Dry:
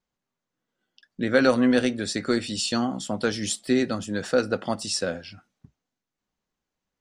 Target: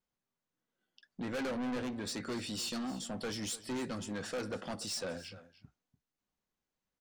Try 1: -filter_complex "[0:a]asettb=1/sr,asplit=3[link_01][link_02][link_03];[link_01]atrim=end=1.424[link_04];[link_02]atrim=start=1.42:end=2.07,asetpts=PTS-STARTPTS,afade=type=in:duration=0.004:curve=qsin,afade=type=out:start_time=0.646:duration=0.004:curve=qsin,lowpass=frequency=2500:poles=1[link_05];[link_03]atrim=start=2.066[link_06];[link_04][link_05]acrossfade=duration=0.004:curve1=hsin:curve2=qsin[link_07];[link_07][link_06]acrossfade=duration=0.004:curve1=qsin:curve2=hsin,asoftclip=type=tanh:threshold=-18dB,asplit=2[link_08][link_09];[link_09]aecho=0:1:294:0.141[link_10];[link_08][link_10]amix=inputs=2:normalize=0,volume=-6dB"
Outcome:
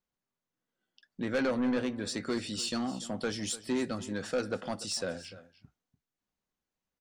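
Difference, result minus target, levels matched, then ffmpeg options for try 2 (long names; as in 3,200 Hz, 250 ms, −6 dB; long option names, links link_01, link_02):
soft clipping: distortion −7 dB
-filter_complex "[0:a]asettb=1/sr,asplit=3[link_01][link_02][link_03];[link_01]atrim=end=1.424[link_04];[link_02]atrim=start=1.42:end=2.07,asetpts=PTS-STARTPTS,afade=type=in:duration=0.004:curve=qsin,afade=type=out:start_time=0.646:duration=0.004:curve=qsin,lowpass=frequency=2500:poles=1[link_05];[link_03]atrim=start=2.066[link_06];[link_04][link_05]acrossfade=duration=0.004:curve1=hsin:curve2=qsin[link_07];[link_07][link_06]acrossfade=duration=0.004:curve1=qsin:curve2=hsin,asoftclip=type=tanh:threshold=-28dB,asplit=2[link_08][link_09];[link_09]aecho=0:1:294:0.141[link_10];[link_08][link_10]amix=inputs=2:normalize=0,volume=-6dB"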